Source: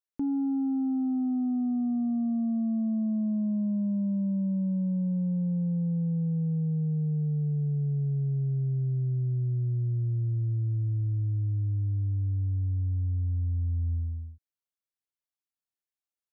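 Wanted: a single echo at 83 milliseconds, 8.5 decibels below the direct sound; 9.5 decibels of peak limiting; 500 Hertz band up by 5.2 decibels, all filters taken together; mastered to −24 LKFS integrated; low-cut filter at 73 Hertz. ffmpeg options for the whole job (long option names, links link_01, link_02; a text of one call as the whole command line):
ffmpeg -i in.wav -af "highpass=73,equalizer=frequency=500:width_type=o:gain=6.5,alimiter=level_in=6.5dB:limit=-24dB:level=0:latency=1,volume=-6.5dB,aecho=1:1:83:0.376,volume=11dB" out.wav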